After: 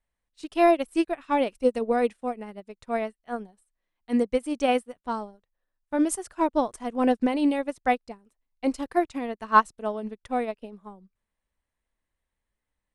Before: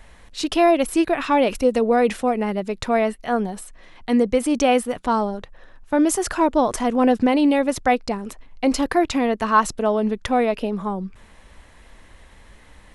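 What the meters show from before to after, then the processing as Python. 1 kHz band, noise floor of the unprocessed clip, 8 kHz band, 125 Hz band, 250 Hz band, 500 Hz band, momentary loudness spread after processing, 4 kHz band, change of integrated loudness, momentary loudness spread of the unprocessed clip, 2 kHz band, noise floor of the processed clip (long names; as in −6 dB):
−5.0 dB, −49 dBFS, −10.0 dB, below −10 dB, −7.0 dB, −6.5 dB, 15 LU, −10.0 dB, −6.0 dB, 11 LU, −6.0 dB, −85 dBFS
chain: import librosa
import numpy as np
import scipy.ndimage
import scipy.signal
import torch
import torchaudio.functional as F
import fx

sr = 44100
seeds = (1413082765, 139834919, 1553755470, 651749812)

y = fx.peak_eq(x, sr, hz=8700.0, db=8.0, octaves=0.25)
y = fx.upward_expand(y, sr, threshold_db=-36.0, expansion=2.5)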